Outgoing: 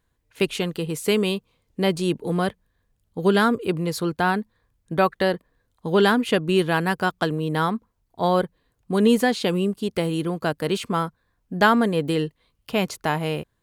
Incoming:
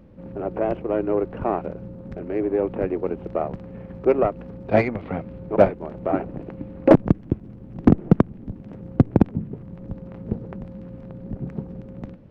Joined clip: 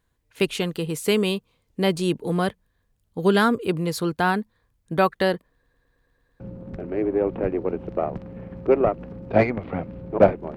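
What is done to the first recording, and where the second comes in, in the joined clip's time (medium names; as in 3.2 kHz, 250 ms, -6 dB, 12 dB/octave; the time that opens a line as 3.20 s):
outgoing
5.52 s: stutter in place 0.11 s, 8 plays
6.40 s: go over to incoming from 1.78 s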